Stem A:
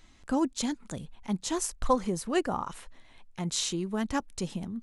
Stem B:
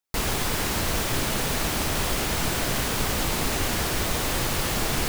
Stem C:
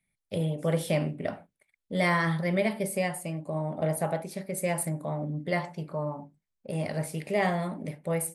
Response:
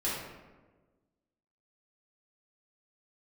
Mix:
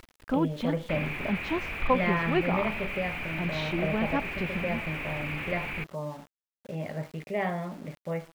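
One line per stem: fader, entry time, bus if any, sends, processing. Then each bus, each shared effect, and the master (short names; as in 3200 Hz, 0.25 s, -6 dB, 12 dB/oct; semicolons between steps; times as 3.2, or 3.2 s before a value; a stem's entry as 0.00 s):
+0.5 dB, 0.00 s, no send, dry
-9.0 dB, 0.75 s, no send, synth low-pass 2400 Hz, resonance Q 8.6; soft clip -22.5 dBFS, distortion -11 dB
-3.5 dB, 0.00 s, no send, dry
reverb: off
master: LPF 3200 Hz 24 dB/oct; upward compressor, threshold -46 dBFS; sample gate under -46.5 dBFS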